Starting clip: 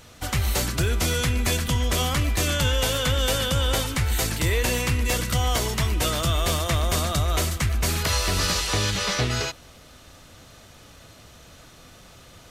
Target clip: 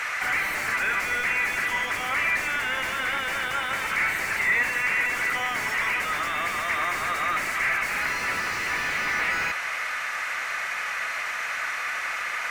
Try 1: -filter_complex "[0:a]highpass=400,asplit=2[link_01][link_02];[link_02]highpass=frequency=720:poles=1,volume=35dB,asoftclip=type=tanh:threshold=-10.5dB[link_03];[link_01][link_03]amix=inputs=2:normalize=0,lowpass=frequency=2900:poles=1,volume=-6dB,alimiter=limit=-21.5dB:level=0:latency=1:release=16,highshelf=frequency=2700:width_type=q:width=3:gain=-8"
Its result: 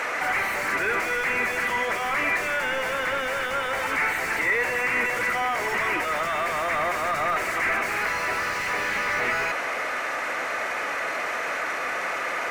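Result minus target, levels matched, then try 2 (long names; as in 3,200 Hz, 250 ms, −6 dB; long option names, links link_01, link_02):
500 Hz band +9.0 dB
-filter_complex "[0:a]highpass=1400,asplit=2[link_01][link_02];[link_02]highpass=frequency=720:poles=1,volume=35dB,asoftclip=type=tanh:threshold=-10.5dB[link_03];[link_01][link_03]amix=inputs=2:normalize=0,lowpass=frequency=2900:poles=1,volume=-6dB,alimiter=limit=-21.5dB:level=0:latency=1:release=16,highshelf=frequency=2700:width_type=q:width=3:gain=-8"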